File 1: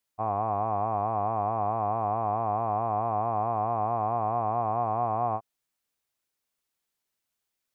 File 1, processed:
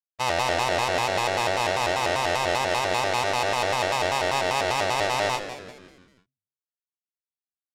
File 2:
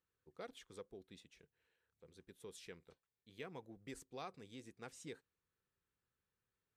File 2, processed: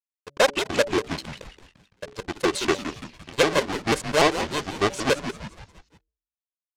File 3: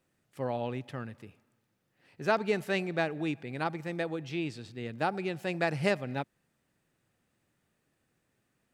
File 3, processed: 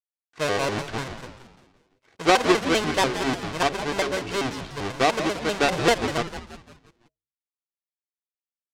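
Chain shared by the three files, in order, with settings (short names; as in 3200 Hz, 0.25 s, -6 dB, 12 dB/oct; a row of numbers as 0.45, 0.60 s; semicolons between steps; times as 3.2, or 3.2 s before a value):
half-waves squared off; in parallel at +1 dB: vocal rider within 3 dB 2 s; on the sum: comb 2.2 ms, depth 38%; gate with hold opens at -51 dBFS; crossover distortion -53 dBFS; LPF 6500 Hz 12 dB/oct; low shelf 280 Hz -10.5 dB; de-hum 167.1 Hz, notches 4; on a send: frequency-shifting echo 0.17 s, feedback 48%, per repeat -110 Hz, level -10.5 dB; on the sum: shaped vibrato square 5.1 Hz, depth 250 cents; match loudness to -24 LUFS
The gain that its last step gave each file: -4.0, +22.0, 0.0 dB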